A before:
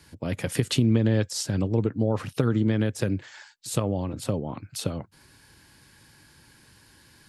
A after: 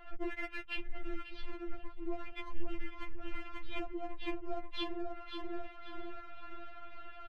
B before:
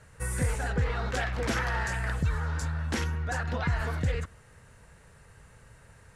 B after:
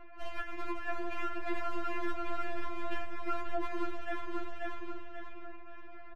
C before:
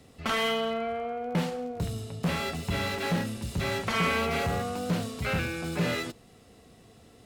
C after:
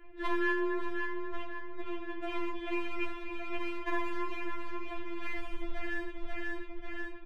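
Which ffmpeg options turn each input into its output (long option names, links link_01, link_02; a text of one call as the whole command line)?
ffmpeg -i in.wav -filter_complex "[0:a]highpass=frequency=200:width_type=q:width=0.5412,highpass=frequency=200:width_type=q:width=1.307,lowpass=frequency=3100:width_type=q:width=0.5176,lowpass=frequency=3100:width_type=q:width=0.7071,lowpass=frequency=3100:width_type=q:width=1.932,afreqshift=-320,equalizer=frequency=640:width_type=o:width=0.64:gain=7,acrossover=split=410|1800|2200[link_01][link_02][link_03][link_04];[link_02]aeval=exprs='max(val(0),0)':channel_layout=same[link_05];[link_01][link_05][link_03][link_04]amix=inputs=4:normalize=0,aecho=1:1:537|1074|1611|2148:0.355|0.131|0.0486|0.018,acompressor=threshold=-42dB:ratio=6,anlmdn=0.0000251,afftfilt=real='re*4*eq(mod(b,16),0)':imag='im*4*eq(mod(b,16),0)':win_size=2048:overlap=0.75,volume=12dB" out.wav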